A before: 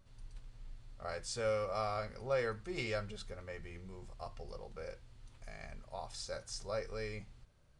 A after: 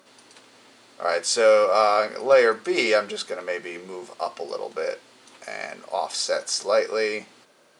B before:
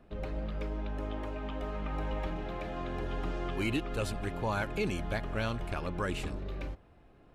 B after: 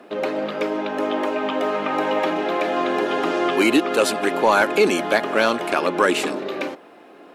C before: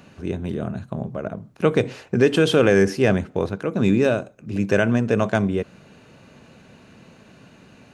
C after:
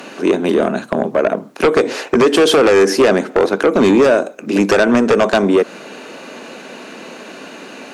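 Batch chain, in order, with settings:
HPF 270 Hz 24 dB/oct; dynamic EQ 2700 Hz, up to -5 dB, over -43 dBFS, Q 2.1; compressor 3:1, threshold -24 dBFS; sine folder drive 8 dB, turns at -12.5 dBFS; normalise peaks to -6 dBFS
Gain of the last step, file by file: +6.5, +6.5, +6.5 dB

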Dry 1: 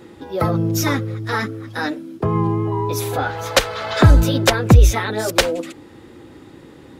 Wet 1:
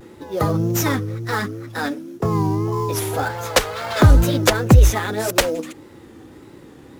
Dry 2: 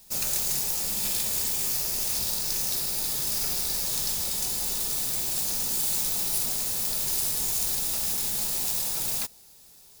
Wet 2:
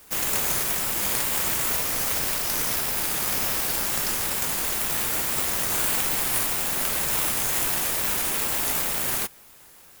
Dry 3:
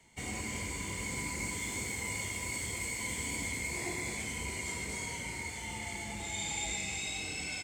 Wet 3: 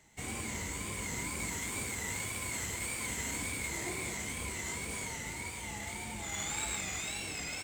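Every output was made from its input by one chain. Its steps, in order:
high shelf 6800 Hz +8 dB; in parallel at -7 dB: sample-rate reducer 5900 Hz, jitter 20%; on the sum: wow and flutter 92 cents; gain -4 dB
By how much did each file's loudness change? -1.0, +2.5, -0.5 LU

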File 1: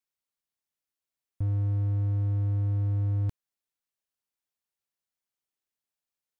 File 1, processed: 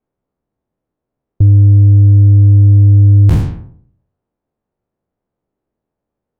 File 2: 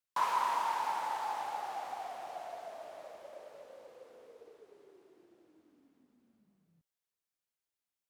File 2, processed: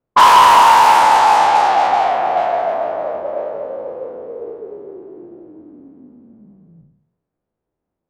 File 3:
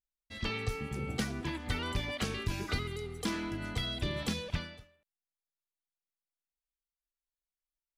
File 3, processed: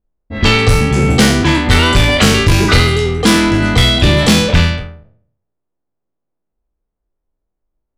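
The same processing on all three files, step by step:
spectral trails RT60 0.68 s; soft clip -28.5 dBFS; low-pass opened by the level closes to 500 Hz, open at -31.5 dBFS; normalise peaks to -3 dBFS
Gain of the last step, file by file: +25.5, +25.5, +25.0 dB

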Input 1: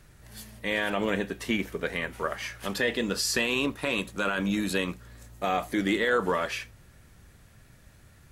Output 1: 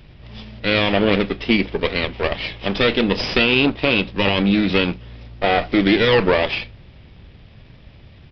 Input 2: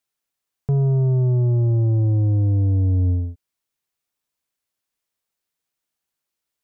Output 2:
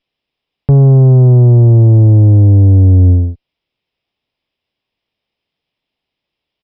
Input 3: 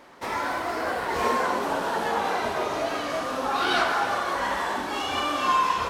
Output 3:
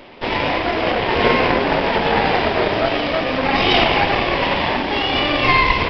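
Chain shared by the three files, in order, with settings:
minimum comb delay 0.33 ms; downsampling 11025 Hz; normalise peaks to -3 dBFS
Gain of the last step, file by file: +11.5, +12.0, +11.0 dB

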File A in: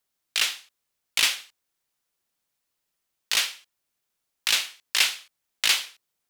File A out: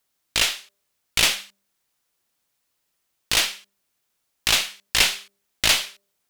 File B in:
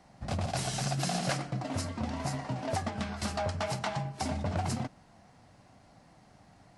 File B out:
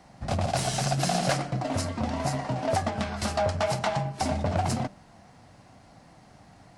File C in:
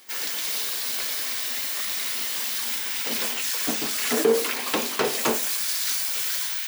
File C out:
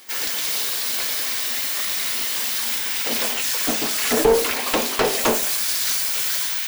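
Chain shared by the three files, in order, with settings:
one diode to ground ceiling -22.5 dBFS; de-hum 199.2 Hz, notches 3; dynamic EQ 640 Hz, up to +4 dB, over -45 dBFS, Q 1.9; gain +5.5 dB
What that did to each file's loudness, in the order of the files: +3.0, +5.5, +4.0 LU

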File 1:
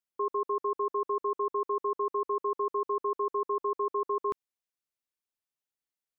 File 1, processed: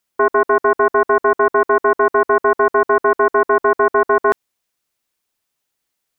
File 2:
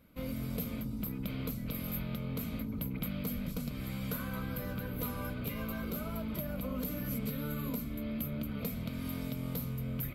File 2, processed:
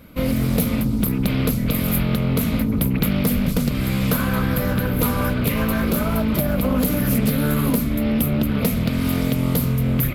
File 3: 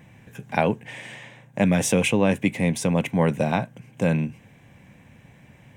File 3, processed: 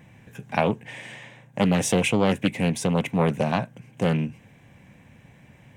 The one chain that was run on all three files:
Doppler distortion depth 0.32 ms; normalise peaks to -6 dBFS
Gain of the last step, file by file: +16.5, +17.5, -1.0 dB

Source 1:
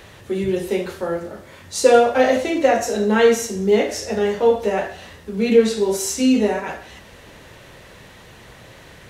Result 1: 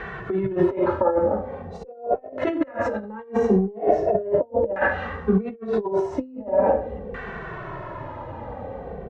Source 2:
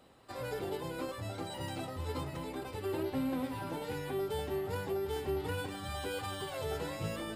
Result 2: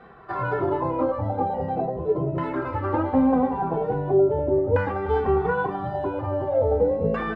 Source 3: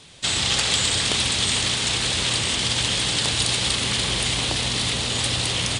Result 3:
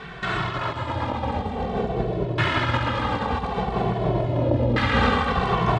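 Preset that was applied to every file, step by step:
negative-ratio compressor -26 dBFS, ratio -0.5; LFO low-pass saw down 0.42 Hz 480–1600 Hz; endless flanger 2.2 ms -0.55 Hz; match loudness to -24 LUFS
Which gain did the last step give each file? +4.0, +15.0, +11.0 dB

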